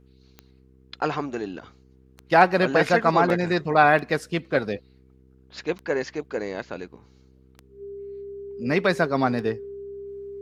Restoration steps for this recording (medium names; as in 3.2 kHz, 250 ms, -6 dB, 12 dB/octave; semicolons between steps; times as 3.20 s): de-click; de-hum 64.9 Hz, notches 7; band-stop 400 Hz, Q 30